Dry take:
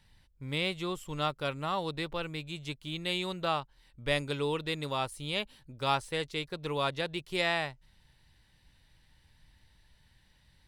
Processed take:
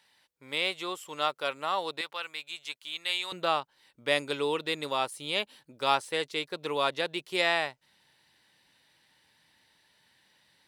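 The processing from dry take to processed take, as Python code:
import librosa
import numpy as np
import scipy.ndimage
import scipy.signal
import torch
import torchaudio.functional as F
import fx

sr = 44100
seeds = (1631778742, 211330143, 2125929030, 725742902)

y = fx.highpass(x, sr, hz=fx.steps((0.0, 480.0), (2.01, 1000.0), (3.32, 300.0)), slope=12)
y = F.gain(torch.from_numpy(y), 3.5).numpy()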